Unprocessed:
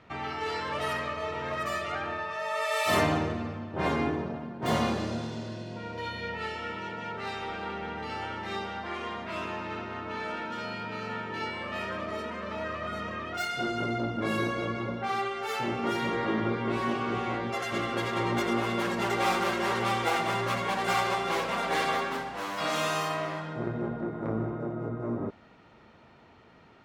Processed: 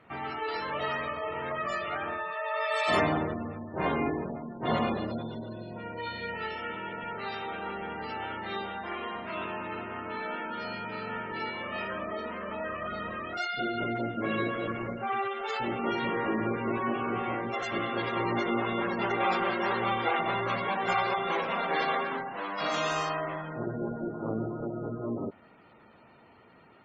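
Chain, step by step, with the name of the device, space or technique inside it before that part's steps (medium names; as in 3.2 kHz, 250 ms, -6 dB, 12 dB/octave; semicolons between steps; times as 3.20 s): noise-suppressed video call (high-pass 130 Hz 6 dB/octave; spectral gate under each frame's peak -20 dB strong; Opus 20 kbps 48 kHz)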